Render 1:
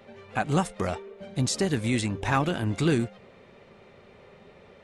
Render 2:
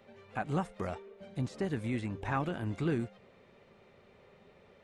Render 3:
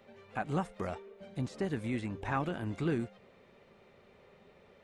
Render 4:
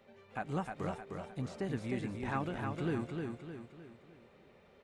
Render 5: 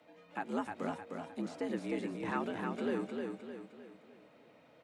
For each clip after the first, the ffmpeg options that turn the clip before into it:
-filter_complex "[0:a]acrossover=split=2500[a][b];[b]acompressor=threshold=-48dB:ratio=4:attack=1:release=60[c];[a][c]amix=inputs=2:normalize=0,volume=-8dB"
-af "equalizer=f=110:w=1.8:g=-2.5"
-af "aecho=1:1:307|614|921|1228|1535:0.596|0.262|0.115|0.0507|0.0223,volume=-3.5dB"
-af "afreqshift=77"

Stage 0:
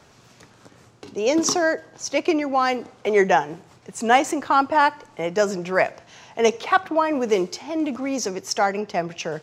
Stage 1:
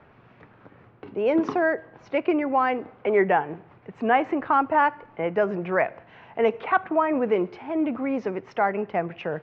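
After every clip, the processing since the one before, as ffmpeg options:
-filter_complex "[0:a]asplit=2[a][b];[b]alimiter=limit=-13dB:level=0:latency=1:release=178,volume=0dB[c];[a][c]amix=inputs=2:normalize=0,lowpass=f=2.4k:w=0.5412,lowpass=f=2.4k:w=1.3066,volume=-6.5dB"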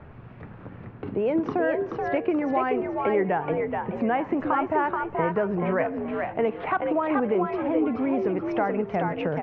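-filter_complex "[0:a]aemphasis=mode=reproduction:type=bsi,acompressor=threshold=-29dB:ratio=2.5,asplit=5[a][b][c][d][e];[b]adelay=429,afreqshift=67,volume=-4dB[f];[c]adelay=858,afreqshift=134,volume=-14.2dB[g];[d]adelay=1287,afreqshift=201,volume=-24.3dB[h];[e]adelay=1716,afreqshift=268,volume=-34.5dB[i];[a][f][g][h][i]amix=inputs=5:normalize=0,volume=3.5dB"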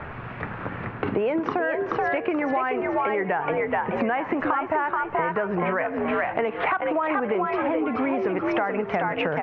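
-filter_complex "[0:a]equalizer=f=1.7k:w=0.41:g=12,asplit=2[a][b];[b]alimiter=limit=-11.5dB:level=0:latency=1:release=23,volume=-1dB[c];[a][c]amix=inputs=2:normalize=0,acompressor=threshold=-21dB:ratio=10"

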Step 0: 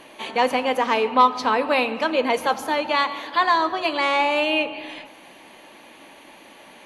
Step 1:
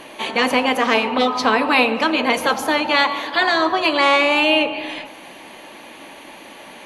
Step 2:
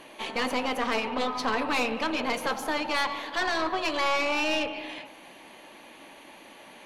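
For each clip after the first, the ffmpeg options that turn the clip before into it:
-af "afftfilt=real='re*lt(hypot(re,im),0.708)':imag='im*lt(hypot(re,im),0.708)':win_size=1024:overlap=0.75,volume=7dB"
-af "aeval=exprs='(tanh(4.47*val(0)+0.55)-tanh(0.55))/4.47':c=same,volume=-7dB"

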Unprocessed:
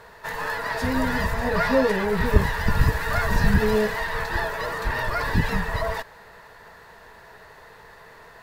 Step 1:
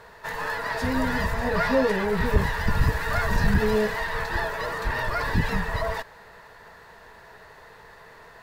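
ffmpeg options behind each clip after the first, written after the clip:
-af "equalizer=f=13k:t=o:w=0.85:g=-2.5,acontrast=66,volume=-7.5dB"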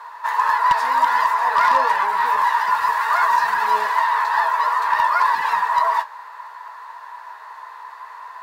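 -af "highpass=f=1k:t=q:w=7.9,flanger=delay=6.7:depth=9.5:regen=-39:speed=0.57:shape=triangular,aeval=exprs='0.224*(abs(mod(val(0)/0.224+3,4)-2)-1)':c=same,volume=5.5dB"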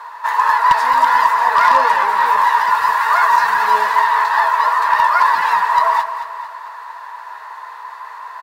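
-af "areverse,acompressor=mode=upward:threshold=-33dB:ratio=2.5,areverse,aecho=1:1:221|442|663|884|1105:0.282|0.138|0.0677|0.0332|0.0162,volume=4dB"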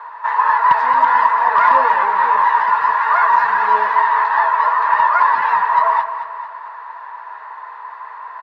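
-af "highpass=110,lowpass=2.2k"

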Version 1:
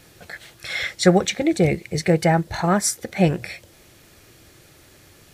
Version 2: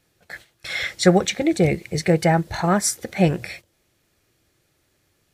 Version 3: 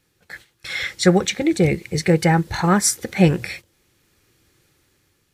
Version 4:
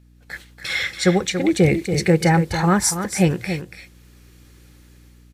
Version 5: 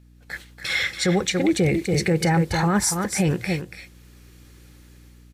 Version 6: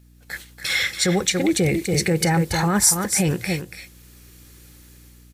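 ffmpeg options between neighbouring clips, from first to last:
-af "agate=range=-16dB:threshold=-39dB:ratio=16:detection=peak"
-af "equalizer=f=650:w=6.3:g=-13.5,dynaudnorm=f=420:g=5:m=9dB"
-af "dynaudnorm=f=130:g=5:m=9dB,aeval=exprs='val(0)+0.00447*(sin(2*PI*60*n/s)+sin(2*PI*2*60*n/s)/2+sin(2*PI*3*60*n/s)/3+sin(2*PI*4*60*n/s)/4+sin(2*PI*5*60*n/s)/5)':c=same,aecho=1:1:283:0.355,volume=-3dB"
-af "alimiter=limit=-11.5dB:level=0:latency=1:release=20"
-af "crystalizer=i=1.5:c=0"

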